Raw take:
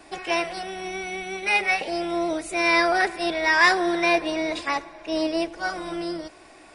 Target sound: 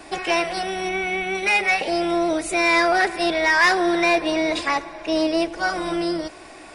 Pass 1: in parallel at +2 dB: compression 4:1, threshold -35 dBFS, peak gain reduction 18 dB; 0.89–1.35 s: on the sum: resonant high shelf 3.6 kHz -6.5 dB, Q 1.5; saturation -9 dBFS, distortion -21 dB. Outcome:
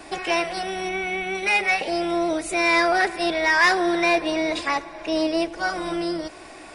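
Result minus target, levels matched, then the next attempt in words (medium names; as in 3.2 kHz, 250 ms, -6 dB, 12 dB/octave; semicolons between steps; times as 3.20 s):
compression: peak gain reduction +6.5 dB
in parallel at +2 dB: compression 4:1, threshold -26.5 dBFS, peak gain reduction 12 dB; 0.89–1.35 s: on the sum: resonant high shelf 3.6 kHz -6.5 dB, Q 1.5; saturation -9 dBFS, distortion -20 dB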